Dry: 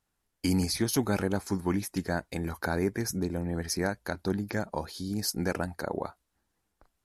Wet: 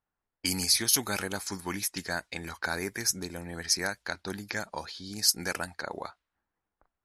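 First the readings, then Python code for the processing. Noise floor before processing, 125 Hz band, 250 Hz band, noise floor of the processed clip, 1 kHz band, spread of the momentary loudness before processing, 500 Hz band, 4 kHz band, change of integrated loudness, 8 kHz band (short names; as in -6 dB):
-80 dBFS, -9.0 dB, -8.5 dB, under -85 dBFS, -1.5 dB, 7 LU, -6.0 dB, +8.0 dB, +1.5 dB, +8.0 dB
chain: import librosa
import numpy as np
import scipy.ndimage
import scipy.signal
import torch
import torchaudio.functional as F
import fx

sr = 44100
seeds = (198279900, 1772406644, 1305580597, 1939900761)

y = fx.env_lowpass(x, sr, base_hz=1000.0, full_db=-26.0)
y = fx.tilt_shelf(y, sr, db=-9.5, hz=1100.0)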